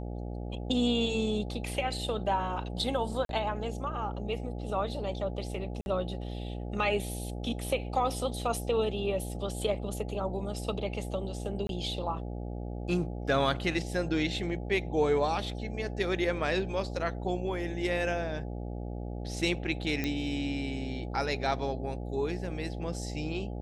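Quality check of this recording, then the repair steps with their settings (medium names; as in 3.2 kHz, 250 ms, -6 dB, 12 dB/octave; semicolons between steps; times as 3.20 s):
buzz 60 Hz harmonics 14 -37 dBFS
3.25–3.29 s: dropout 42 ms
5.81–5.86 s: dropout 51 ms
11.67–11.69 s: dropout 22 ms
20.04 s: pop -17 dBFS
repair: de-click; de-hum 60 Hz, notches 14; interpolate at 3.25 s, 42 ms; interpolate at 5.81 s, 51 ms; interpolate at 11.67 s, 22 ms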